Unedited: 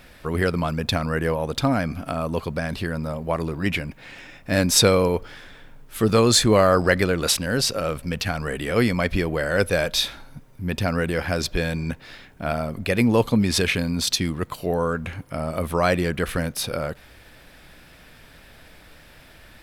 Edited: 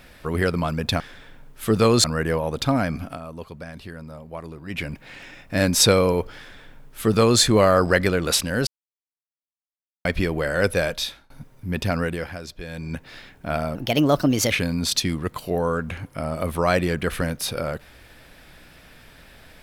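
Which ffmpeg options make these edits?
ffmpeg -i in.wav -filter_complex "[0:a]asplit=12[link_01][link_02][link_03][link_04][link_05][link_06][link_07][link_08][link_09][link_10][link_11][link_12];[link_01]atrim=end=1.002[link_13];[link_02]atrim=start=5.328:end=6.372[link_14];[link_03]atrim=start=0.998:end=2.16,asetpts=PTS-STARTPTS,afade=type=out:start_time=0.982:duration=0.18:silence=0.298538[link_15];[link_04]atrim=start=2.16:end=3.66,asetpts=PTS-STARTPTS,volume=-10.5dB[link_16];[link_05]atrim=start=3.66:end=7.63,asetpts=PTS-STARTPTS,afade=type=in:duration=0.18:silence=0.298538,afade=type=out:start_time=3.966:duration=0.004:curve=hsin[link_17];[link_06]atrim=start=7.63:end=9.01,asetpts=PTS-STARTPTS,volume=0[link_18];[link_07]atrim=start=9.01:end=10.26,asetpts=PTS-STARTPTS,afade=type=in:duration=0.004:curve=hsin,afade=type=out:start_time=0.72:duration=0.53:silence=0.0668344[link_19];[link_08]atrim=start=10.26:end=11.35,asetpts=PTS-STARTPTS,afade=type=in:duration=0.004:curve=hsin:silence=0.0668344,afade=type=out:start_time=0.66:duration=0.43:silence=0.251189[link_20];[link_09]atrim=start=11.35:end=11.62,asetpts=PTS-STARTPTS,volume=-12dB[link_21];[link_10]atrim=start=11.62:end=12.714,asetpts=PTS-STARTPTS,afade=type=in:duration=0.43:silence=0.251189[link_22];[link_11]atrim=start=12.71:end=13.67,asetpts=PTS-STARTPTS,asetrate=55566,aresample=44100[link_23];[link_12]atrim=start=13.666[link_24];[link_13][link_14]acrossfade=duration=0.004:curve1=hsin:curve2=hsin[link_25];[link_15][link_16][link_17][link_18][link_19][link_20][link_21][link_22]concat=n=8:v=0:a=1[link_26];[link_25][link_26]acrossfade=duration=0.004:curve1=hsin:curve2=hsin[link_27];[link_27][link_23]acrossfade=duration=0.004:curve1=hsin:curve2=hsin[link_28];[link_28][link_24]acrossfade=duration=0.004:curve1=hsin:curve2=hsin" out.wav

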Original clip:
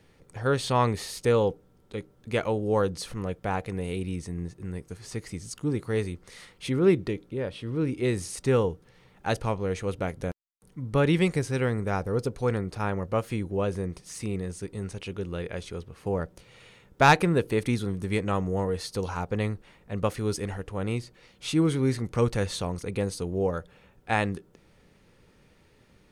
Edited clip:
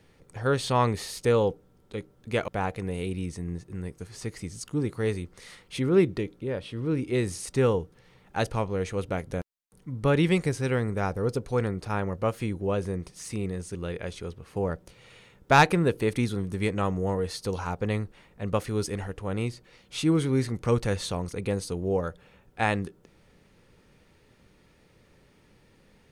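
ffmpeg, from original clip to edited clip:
ffmpeg -i in.wav -filter_complex "[0:a]asplit=3[link_01][link_02][link_03];[link_01]atrim=end=2.482[link_04];[link_02]atrim=start=3.378:end=14.652[link_05];[link_03]atrim=start=15.248[link_06];[link_04][link_05]acrossfade=duration=0.004:curve1=hsin:curve2=hsin[link_07];[link_07][link_06]acrossfade=duration=0.004:curve1=hsin:curve2=hsin" out.wav

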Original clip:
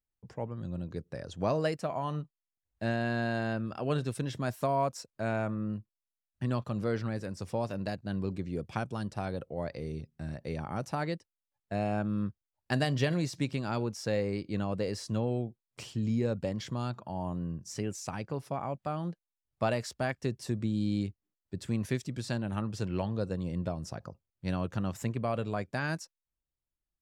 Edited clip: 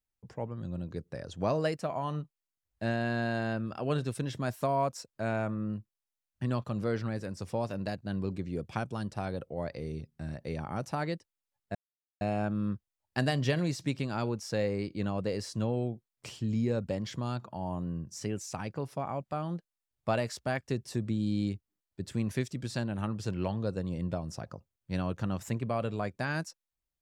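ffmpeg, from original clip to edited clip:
ffmpeg -i in.wav -filter_complex "[0:a]asplit=2[link_01][link_02];[link_01]atrim=end=11.75,asetpts=PTS-STARTPTS,afade=type=out:start_time=11.746:duration=0.004:curve=hsin,apad=pad_dur=0.46[link_03];[link_02]atrim=start=11.75,asetpts=PTS-STARTPTS,afade=type=in:duration=0.004:curve=hsin[link_04];[link_03][link_04]concat=n=2:v=0:a=1" out.wav

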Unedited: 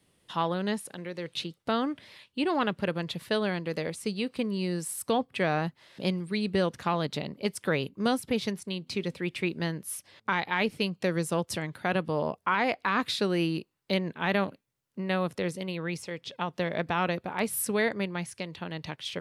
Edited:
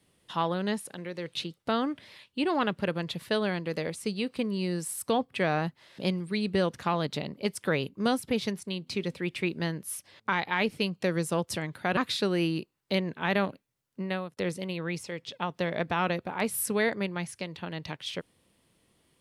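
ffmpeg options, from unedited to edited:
ffmpeg -i in.wav -filter_complex "[0:a]asplit=3[link_01][link_02][link_03];[link_01]atrim=end=11.972[link_04];[link_02]atrim=start=12.958:end=15.36,asetpts=PTS-STARTPTS,afade=type=out:start_time=2.062:duration=0.34[link_05];[link_03]atrim=start=15.36,asetpts=PTS-STARTPTS,afade=type=in:duration=0.004:curve=hsin[link_06];[link_05][link_06]concat=n=2:v=0:a=1[link_07];[link_04][link_07]acrossfade=duration=0.004:curve1=hsin:curve2=hsin" out.wav

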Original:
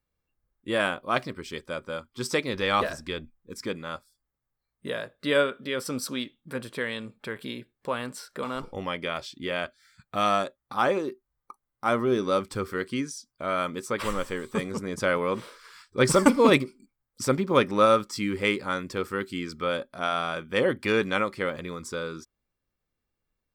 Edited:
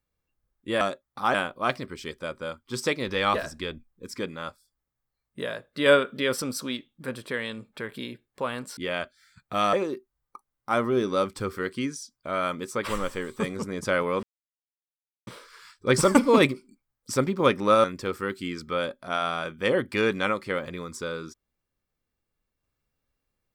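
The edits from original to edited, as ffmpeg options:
ffmpeg -i in.wav -filter_complex "[0:a]asplit=9[link_01][link_02][link_03][link_04][link_05][link_06][link_07][link_08][link_09];[link_01]atrim=end=0.812[link_10];[link_02]atrim=start=10.348:end=10.882[link_11];[link_03]atrim=start=0.808:end=5.332[link_12];[link_04]atrim=start=5.328:end=5.892,asetpts=PTS-STARTPTS,volume=4.5dB[link_13];[link_05]atrim=start=5.888:end=8.242[link_14];[link_06]atrim=start=9.388:end=10.352[link_15];[link_07]atrim=start=10.878:end=15.38,asetpts=PTS-STARTPTS,afade=type=out:start_time=4.498:duration=0.004:curve=hsin,apad=pad_dur=1.04[link_16];[link_08]atrim=start=15.38:end=17.952,asetpts=PTS-STARTPTS,afade=type=in:duration=0.004:curve=hsin[link_17];[link_09]atrim=start=18.748[link_18];[link_10][link_11]acrossfade=duration=0.004:curve1=hsin:curve2=hsin[link_19];[link_19][link_12]acrossfade=duration=0.004:curve1=hsin:curve2=hsin[link_20];[link_20][link_13]acrossfade=duration=0.004:curve1=hsin:curve2=hsin[link_21];[link_21][link_14]acrossfade=duration=0.004:curve1=hsin:curve2=hsin[link_22];[link_22][link_15]acrossfade=duration=0.004:curve1=hsin:curve2=hsin[link_23];[link_16][link_17]concat=n=2:v=0:a=1[link_24];[link_23][link_24]acrossfade=duration=0.004:curve1=hsin:curve2=hsin[link_25];[link_25][link_18]acrossfade=duration=0.004:curve1=hsin:curve2=hsin" out.wav

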